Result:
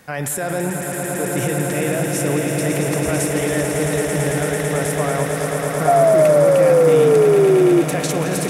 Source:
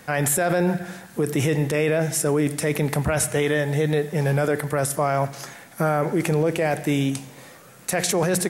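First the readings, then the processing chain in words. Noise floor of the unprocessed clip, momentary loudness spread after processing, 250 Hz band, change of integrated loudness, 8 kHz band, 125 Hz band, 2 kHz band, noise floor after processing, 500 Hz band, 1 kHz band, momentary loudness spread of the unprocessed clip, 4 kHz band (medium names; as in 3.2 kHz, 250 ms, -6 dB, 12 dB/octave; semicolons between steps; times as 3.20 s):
-47 dBFS, 10 LU, +4.5 dB, +6.0 dB, +2.5 dB, +2.0 dB, +2.5 dB, -25 dBFS, +8.5 dB, +5.0 dB, 7 LU, +2.0 dB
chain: echo with a slow build-up 111 ms, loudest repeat 8, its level -7 dB; painted sound fall, 5.87–7.82 s, 340–710 Hz -10 dBFS; trim -2.5 dB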